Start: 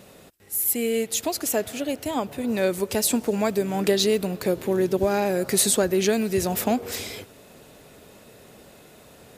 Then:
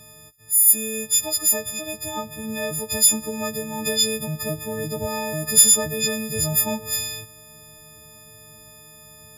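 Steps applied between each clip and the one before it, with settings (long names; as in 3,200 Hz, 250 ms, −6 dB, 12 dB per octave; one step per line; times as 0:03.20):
every partial snapped to a pitch grid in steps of 6 semitones
low shelf with overshoot 190 Hz +9.5 dB, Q 1.5
level −6 dB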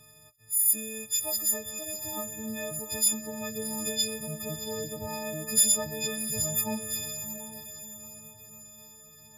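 flanger 0.33 Hz, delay 7.1 ms, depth 4.9 ms, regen +52%
on a send: feedback delay with all-pass diffusion 674 ms, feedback 42%, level −10 dB
on the sum: level −4.5 dB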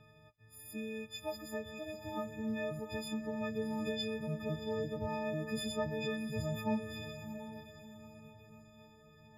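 high-frequency loss of the air 370 metres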